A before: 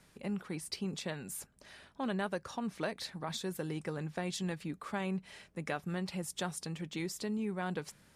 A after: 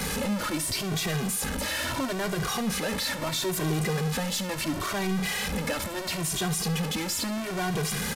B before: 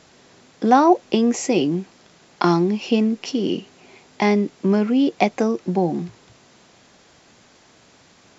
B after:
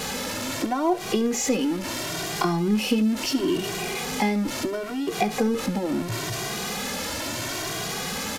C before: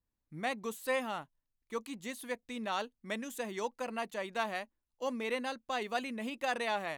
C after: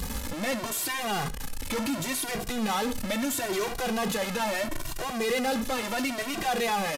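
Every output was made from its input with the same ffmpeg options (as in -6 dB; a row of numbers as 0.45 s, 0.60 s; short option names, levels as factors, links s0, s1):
-filter_complex "[0:a]aeval=exprs='val(0)+0.5*0.0841*sgn(val(0))':c=same,acompressor=threshold=0.141:ratio=12,aecho=1:1:19|70:0.15|0.158,aresample=32000,aresample=44100,asplit=2[s0][s1];[s1]adelay=2,afreqshift=0.74[s2];[s0][s2]amix=inputs=2:normalize=1"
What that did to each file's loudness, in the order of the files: +10.5 LU, -6.0 LU, +8.0 LU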